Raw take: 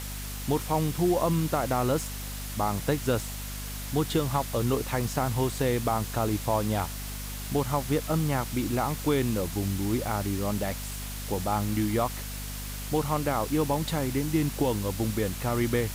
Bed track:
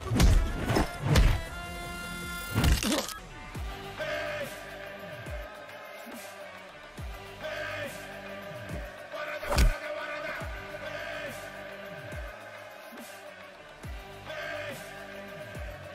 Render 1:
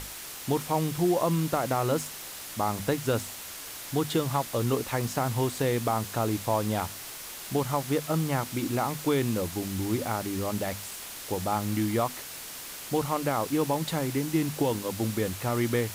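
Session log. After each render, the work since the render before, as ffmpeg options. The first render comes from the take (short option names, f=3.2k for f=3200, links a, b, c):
-af "bandreject=f=50:t=h:w=6,bandreject=f=100:t=h:w=6,bandreject=f=150:t=h:w=6,bandreject=f=200:t=h:w=6,bandreject=f=250:t=h:w=6"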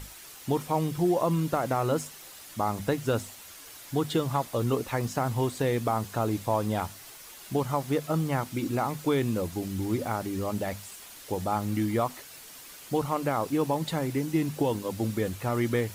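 -af "afftdn=nr=8:nf=-41"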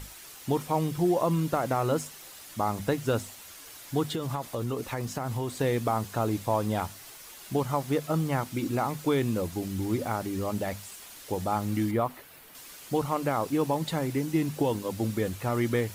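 -filter_complex "[0:a]asettb=1/sr,asplit=3[a][b][c];[a]atrim=end=4.104[d];[b]atrim=start=4.1:end=5.53,asetpts=PTS-STARTPTS,afade=t=in:d=0.004:c=qsin,afade=t=out:st=1.426:d=0.004:c=qsin,acompressor=threshold=-27dB:ratio=6:attack=3.2:release=140:knee=1:detection=peak[e];[c]atrim=start=5.526[f];[d][e]acrossfade=d=0.004:c1=hsin:c2=qsin[g];[g][f]acrossfade=d=0.004:c1=qsin:c2=hsin,asettb=1/sr,asplit=3[h][i][j];[h]atrim=end=11.914[k];[i]atrim=start=11.91:end=12.55,asetpts=PTS-STARTPTS,afade=t=in:d=0.004:c=qsin,afade=t=out:st=0.636:d=0.004:c=qsin,equalizer=f=6.5k:t=o:w=1.6:g=-11.5[l];[j]atrim=start=12.546[m];[k][l]acrossfade=d=0.004:c1=hsin:c2=qsin[n];[n][m]acrossfade=d=0.004:c1=qsin:c2=hsin"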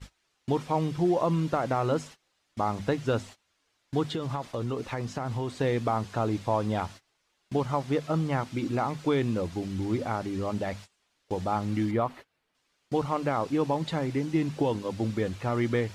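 -af "lowpass=5.2k,agate=range=-23dB:threshold=-43dB:ratio=16:detection=peak"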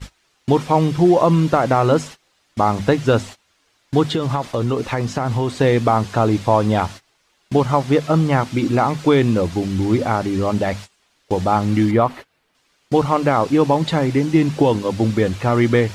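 -af "volume=11.5dB"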